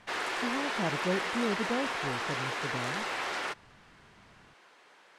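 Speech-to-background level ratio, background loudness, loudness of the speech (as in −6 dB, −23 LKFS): −3.5 dB, −33.0 LKFS, −36.5 LKFS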